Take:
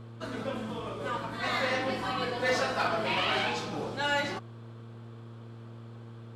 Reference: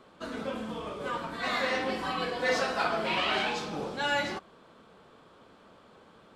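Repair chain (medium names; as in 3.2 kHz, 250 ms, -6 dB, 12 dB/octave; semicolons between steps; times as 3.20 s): clip repair -20 dBFS; de-hum 115.1 Hz, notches 4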